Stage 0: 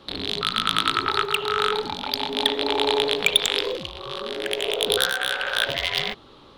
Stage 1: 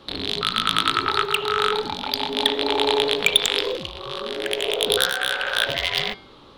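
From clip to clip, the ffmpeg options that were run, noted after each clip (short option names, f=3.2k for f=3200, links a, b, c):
-af "bandreject=f=194.3:t=h:w=4,bandreject=f=388.6:t=h:w=4,bandreject=f=582.9:t=h:w=4,bandreject=f=777.2:t=h:w=4,bandreject=f=971.5:t=h:w=4,bandreject=f=1.1658k:t=h:w=4,bandreject=f=1.3601k:t=h:w=4,bandreject=f=1.5544k:t=h:w=4,bandreject=f=1.7487k:t=h:w=4,bandreject=f=1.943k:t=h:w=4,bandreject=f=2.1373k:t=h:w=4,bandreject=f=2.3316k:t=h:w=4,bandreject=f=2.5259k:t=h:w=4,bandreject=f=2.7202k:t=h:w=4,bandreject=f=2.9145k:t=h:w=4,bandreject=f=3.1088k:t=h:w=4,bandreject=f=3.3031k:t=h:w=4,bandreject=f=3.4974k:t=h:w=4,bandreject=f=3.6917k:t=h:w=4,bandreject=f=3.886k:t=h:w=4,bandreject=f=4.0803k:t=h:w=4,bandreject=f=4.2746k:t=h:w=4,bandreject=f=4.4689k:t=h:w=4,bandreject=f=4.6632k:t=h:w=4,bandreject=f=4.8575k:t=h:w=4,bandreject=f=5.0518k:t=h:w=4,bandreject=f=5.2461k:t=h:w=4,bandreject=f=5.4404k:t=h:w=4,volume=1.5dB"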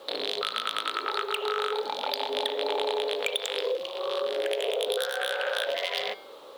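-af "highpass=f=520:t=q:w=4,acompressor=threshold=-23dB:ratio=6,acrusher=bits=8:mix=0:aa=0.5,volume=-2.5dB"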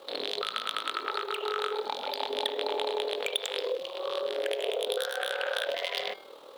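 -af "tremolo=f=39:d=0.571"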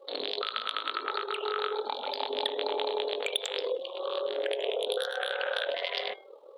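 -af "afftdn=nr=20:nf=-45"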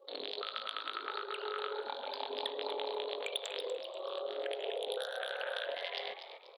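-filter_complex "[0:a]asplit=5[a][b][c][d][e];[b]adelay=242,afreqshift=130,volume=-10dB[f];[c]adelay=484,afreqshift=260,volume=-19.6dB[g];[d]adelay=726,afreqshift=390,volume=-29.3dB[h];[e]adelay=968,afreqshift=520,volume=-38.9dB[i];[a][f][g][h][i]amix=inputs=5:normalize=0,volume=-7.5dB"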